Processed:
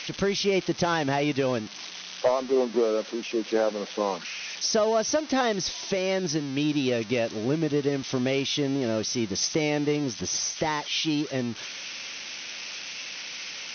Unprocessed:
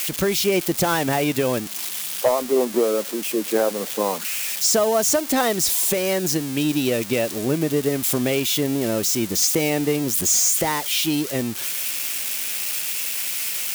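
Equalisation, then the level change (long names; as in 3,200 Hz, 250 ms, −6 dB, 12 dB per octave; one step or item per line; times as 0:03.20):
linear-phase brick-wall low-pass 6,300 Hz
−4.0 dB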